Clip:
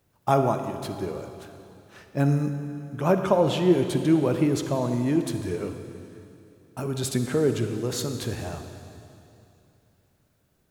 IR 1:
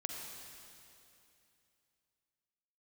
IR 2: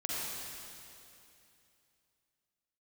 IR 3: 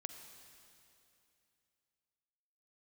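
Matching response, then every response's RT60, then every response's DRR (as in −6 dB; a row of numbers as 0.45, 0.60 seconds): 3; 2.8, 2.8, 2.8 seconds; 1.0, −6.0, 7.0 decibels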